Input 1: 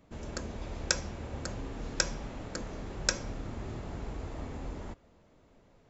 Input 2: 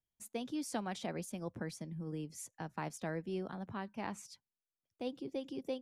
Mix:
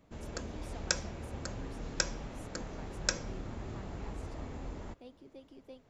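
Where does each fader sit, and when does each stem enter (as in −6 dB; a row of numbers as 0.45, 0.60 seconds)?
−2.5, −12.5 decibels; 0.00, 0.00 seconds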